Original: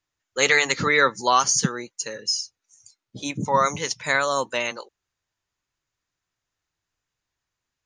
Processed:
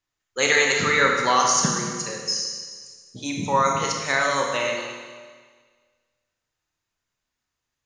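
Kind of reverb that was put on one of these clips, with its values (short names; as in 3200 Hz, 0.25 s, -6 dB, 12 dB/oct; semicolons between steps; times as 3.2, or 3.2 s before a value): Schroeder reverb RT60 1.6 s, combs from 25 ms, DRR 0 dB; gain -2 dB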